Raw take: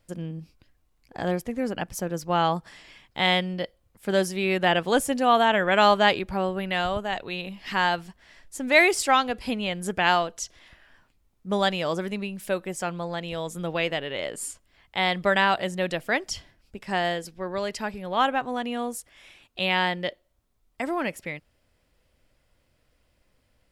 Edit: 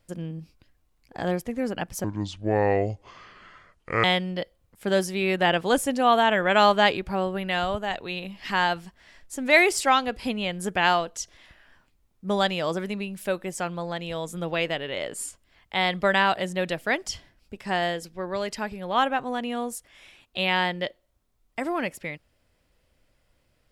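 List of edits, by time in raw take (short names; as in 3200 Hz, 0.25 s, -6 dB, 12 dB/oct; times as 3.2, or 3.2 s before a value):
2.04–3.26 speed 61%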